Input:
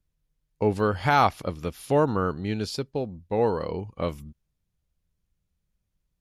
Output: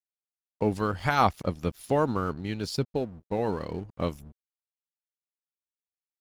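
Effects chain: tone controls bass +7 dB, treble +2 dB; harmonic-percussive split harmonic -10 dB; crossover distortion -50.5 dBFS

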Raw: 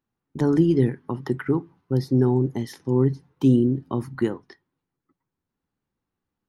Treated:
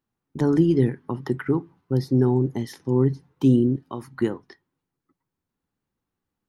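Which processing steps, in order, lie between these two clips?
3.76–4.2 low shelf 460 Hz -11 dB

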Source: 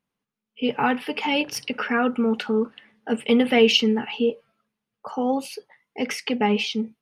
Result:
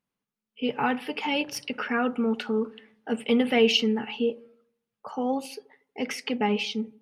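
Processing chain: dark delay 79 ms, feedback 44%, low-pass 870 Hz, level -18.5 dB; gain -4 dB

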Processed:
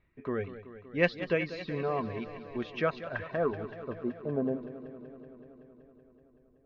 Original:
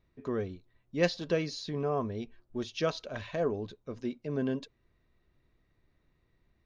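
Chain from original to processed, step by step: reverb removal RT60 0.62 s; low-pass sweep 2300 Hz -> 540 Hz, 2.62–4.92; warbling echo 0.189 s, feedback 76%, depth 73 cents, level -13.5 dB

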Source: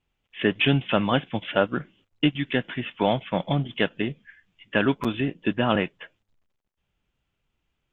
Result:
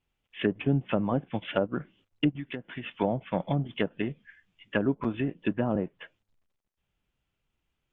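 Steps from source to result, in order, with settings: treble ducked by the level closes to 590 Hz, closed at -18 dBFS; 2.36–2.84 compressor 6:1, threshold -30 dBFS, peak gain reduction 11 dB; gain -3.5 dB

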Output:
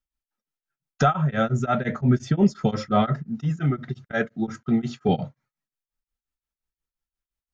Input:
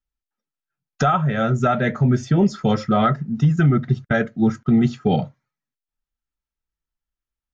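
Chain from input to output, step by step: 3.27–5.09 low shelf 240 Hz -8 dB; beating tremolo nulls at 5.7 Hz

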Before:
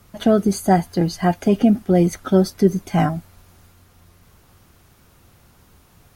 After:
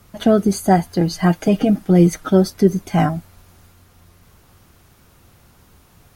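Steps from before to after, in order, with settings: 1.1–2.29 comb 6.4 ms, depth 61%; gain +1.5 dB

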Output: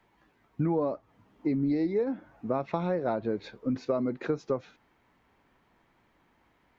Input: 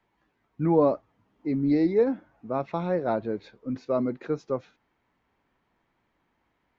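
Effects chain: compressor 8:1, threshold -31 dBFS, peak gain reduction 15 dB; gain +6 dB

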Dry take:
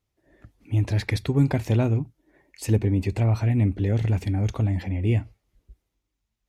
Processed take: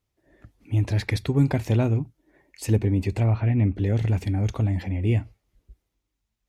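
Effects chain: 3.31–3.76 LPF 3200 Hz 24 dB/oct

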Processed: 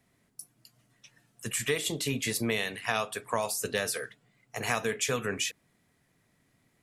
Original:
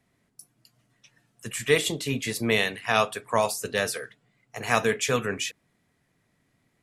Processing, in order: high shelf 6900 Hz +5 dB; compressor 5:1, threshold -26 dBFS, peak gain reduction 10.5 dB

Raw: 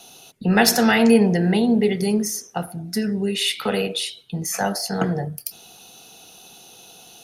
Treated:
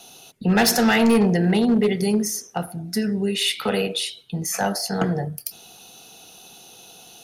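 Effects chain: hard clip -12.5 dBFS, distortion -15 dB

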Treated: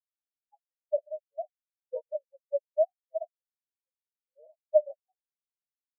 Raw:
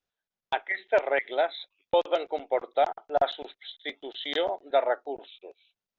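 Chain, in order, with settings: formant-preserving pitch shift -2 st; ladder band-pass 640 Hz, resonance 45%; spectral expander 4:1; gain +8.5 dB

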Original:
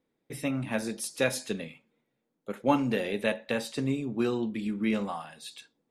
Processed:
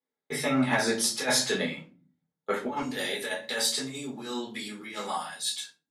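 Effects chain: gate with hold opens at -44 dBFS; bell 2600 Hz -9.5 dB 0.41 oct; negative-ratio compressor -30 dBFS, ratio -0.5; band-pass 2500 Hz, Q 0.52, from 2.81 s 7200 Hz; reverb, pre-delay 5 ms, DRR -4.5 dB; gain +8 dB

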